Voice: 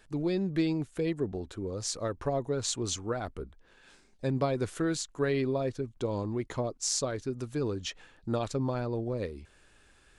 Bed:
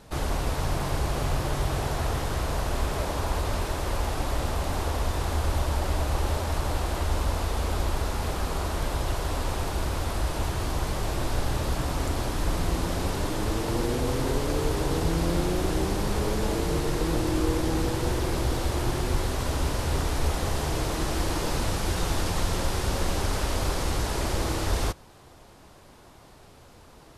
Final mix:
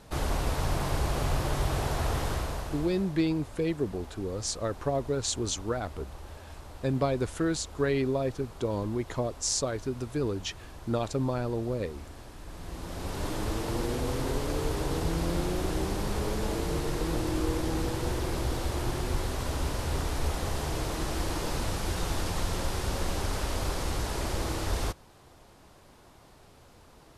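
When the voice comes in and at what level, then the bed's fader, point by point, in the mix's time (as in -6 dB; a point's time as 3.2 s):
2.60 s, +1.5 dB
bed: 2.3 s -1.5 dB
3.18 s -18 dB
12.45 s -18 dB
13.27 s -4 dB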